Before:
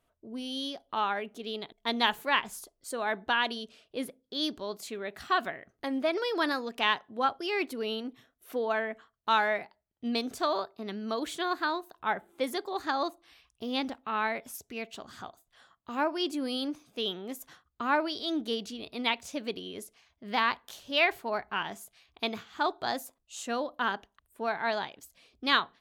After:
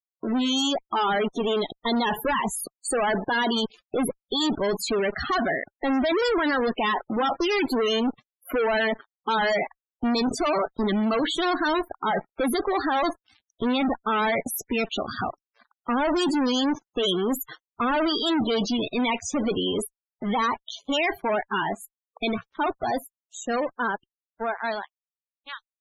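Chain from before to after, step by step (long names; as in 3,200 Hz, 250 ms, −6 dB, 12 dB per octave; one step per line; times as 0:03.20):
fade-out on the ending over 7.58 s
fuzz pedal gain 46 dB, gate −52 dBFS
spectral peaks only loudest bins 32
level −8 dB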